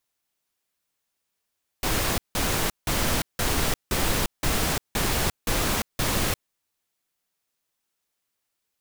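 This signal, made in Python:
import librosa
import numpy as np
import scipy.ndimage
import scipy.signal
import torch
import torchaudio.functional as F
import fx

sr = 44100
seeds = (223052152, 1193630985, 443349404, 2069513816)

y = fx.noise_burst(sr, seeds[0], colour='pink', on_s=0.35, off_s=0.17, bursts=9, level_db=-24.0)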